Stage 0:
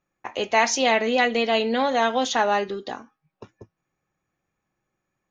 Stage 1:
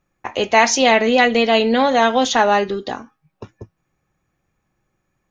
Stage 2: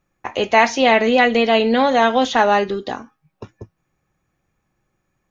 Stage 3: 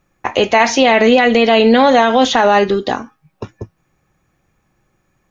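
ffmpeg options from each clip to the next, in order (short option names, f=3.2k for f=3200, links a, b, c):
-af "lowshelf=f=120:g=9.5,volume=6dB"
-filter_complex "[0:a]acrossover=split=3600[a][b];[b]acompressor=threshold=-33dB:ratio=4:attack=1:release=60[c];[a][c]amix=inputs=2:normalize=0"
-af "alimiter=level_in=9dB:limit=-1dB:release=50:level=0:latency=1,volume=-1dB"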